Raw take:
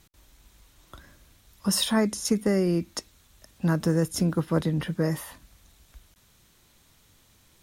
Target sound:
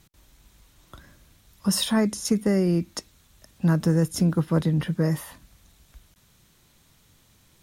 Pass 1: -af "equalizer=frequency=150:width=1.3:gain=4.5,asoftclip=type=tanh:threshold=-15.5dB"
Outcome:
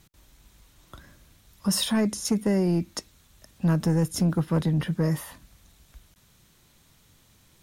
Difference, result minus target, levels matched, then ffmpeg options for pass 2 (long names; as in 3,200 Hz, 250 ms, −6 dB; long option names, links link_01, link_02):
soft clipping: distortion +17 dB
-af "equalizer=frequency=150:width=1.3:gain=4.5,asoftclip=type=tanh:threshold=-5dB"